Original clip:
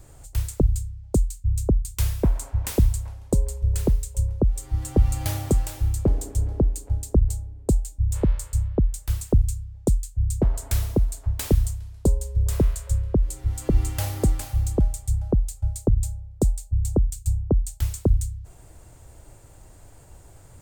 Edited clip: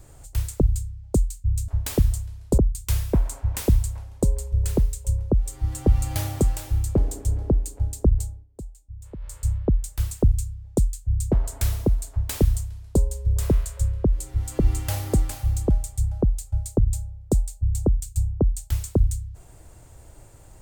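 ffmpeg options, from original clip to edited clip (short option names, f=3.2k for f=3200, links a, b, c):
-filter_complex "[0:a]asplit=5[a][b][c][d][e];[a]atrim=end=1.682[f];[b]atrim=start=11.208:end=12.112[g];[c]atrim=start=1.678:end=7.57,asetpts=PTS-STARTPTS,afade=t=out:st=5.552:d=0.34:c=qsin:silence=0.141254[h];[d]atrim=start=7.57:end=8.3,asetpts=PTS-STARTPTS,volume=-17dB[i];[e]atrim=start=8.3,asetpts=PTS-STARTPTS,afade=t=in:d=0.34:c=qsin:silence=0.141254[j];[f][g]acrossfade=d=0.004:c1=hsin:c2=hsin[k];[h][i][j]concat=n=3:v=0:a=1[l];[k][l]acrossfade=d=0.004:c1=hsin:c2=hsin"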